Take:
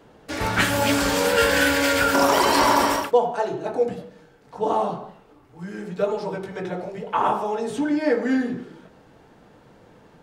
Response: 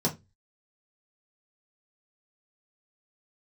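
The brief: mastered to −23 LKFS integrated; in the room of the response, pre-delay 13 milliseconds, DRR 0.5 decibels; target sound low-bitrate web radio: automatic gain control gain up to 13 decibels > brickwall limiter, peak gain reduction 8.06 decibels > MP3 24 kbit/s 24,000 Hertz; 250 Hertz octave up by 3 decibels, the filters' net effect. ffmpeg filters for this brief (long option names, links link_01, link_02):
-filter_complex "[0:a]equalizer=frequency=250:width_type=o:gain=3.5,asplit=2[link_01][link_02];[1:a]atrim=start_sample=2205,adelay=13[link_03];[link_02][link_03]afir=irnorm=-1:irlink=0,volume=-9dB[link_04];[link_01][link_04]amix=inputs=2:normalize=0,dynaudnorm=maxgain=13dB,alimiter=limit=-9dB:level=0:latency=1,volume=-3.5dB" -ar 24000 -c:a libmp3lame -b:a 24k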